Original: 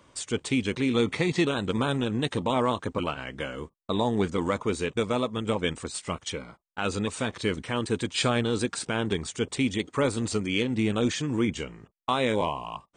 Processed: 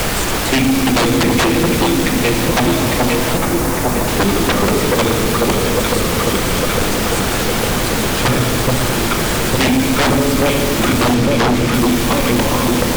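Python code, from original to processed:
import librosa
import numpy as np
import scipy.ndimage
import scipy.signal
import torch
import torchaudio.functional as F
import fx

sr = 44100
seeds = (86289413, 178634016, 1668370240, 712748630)

y = fx.reverse_delay_fb(x, sr, ms=268, feedback_pct=67, wet_db=-8.0)
y = fx.level_steps(y, sr, step_db=23)
y = fx.echo_alternate(y, sr, ms=427, hz=1000.0, feedback_pct=75, wet_db=-4.5)
y = fx.room_shoebox(y, sr, seeds[0], volume_m3=1100.0, walls='mixed', distance_m=0.85)
y = fx.dmg_noise_colour(y, sr, seeds[1], colour='pink', level_db=-39.0)
y = fx.high_shelf(y, sr, hz=7500.0, db=-10.0, at=(11.14, 11.74))
y = fx.fold_sine(y, sr, drive_db=17, ceiling_db=-9.5)
y = fx.peak_eq(y, sr, hz=3400.0, db=-7.5, octaves=1.2, at=(3.37, 4.08))
y = fx.band_squash(y, sr, depth_pct=40)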